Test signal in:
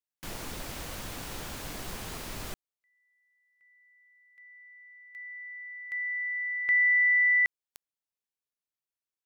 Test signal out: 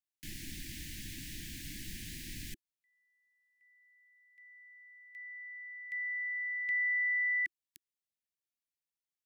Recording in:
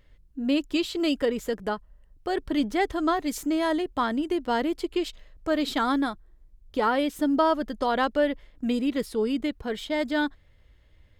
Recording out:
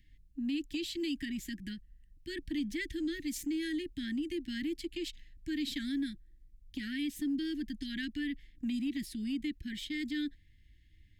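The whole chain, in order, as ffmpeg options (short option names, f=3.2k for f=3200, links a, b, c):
-af "asuperstop=centerf=760:order=20:qfactor=0.57,acompressor=threshold=-25dB:ratio=6:attack=0.27:release=164:knee=6:detection=peak,volume=-4dB"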